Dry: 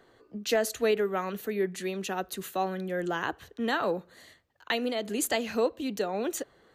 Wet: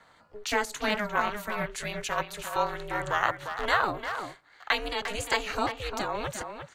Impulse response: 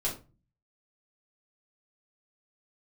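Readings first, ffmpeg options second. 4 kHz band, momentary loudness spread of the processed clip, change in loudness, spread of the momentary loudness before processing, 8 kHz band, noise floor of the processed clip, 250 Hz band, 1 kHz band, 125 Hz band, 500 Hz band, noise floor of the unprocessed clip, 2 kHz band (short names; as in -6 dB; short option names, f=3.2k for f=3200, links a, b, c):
+3.0 dB, 8 LU, +0.5 dB, 7 LU, -2.5 dB, -59 dBFS, -5.5 dB, +5.0 dB, +1.0 dB, -4.5 dB, -62 dBFS, +5.5 dB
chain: -filter_complex "[0:a]deesser=0.75,equalizer=f=500:t=o:w=1:g=-7,equalizer=f=1k:t=o:w=1:g=12,equalizer=f=2k:t=o:w=1:g=5,equalizer=f=4k:t=o:w=1:g=4,equalizer=f=8k:t=o:w=1:g=8,asplit=2[a][b];[b]adelay=350,highpass=300,lowpass=3.4k,asoftclip=type=hard:threshold=-17.5dB,volume=-7dB[c];[a][c]amix=inputs=2:normalize=0,aeval=exprs='val(0)*sin(2*PI*210*n/s)':c=same,acrossover=split=250|1800|2000[d][e][f][g];[f]acrusher=bits=5:mode=log:mix=0:aa=0.000001[h];[d][e][h][g]amix=inputs=4:normalize=0"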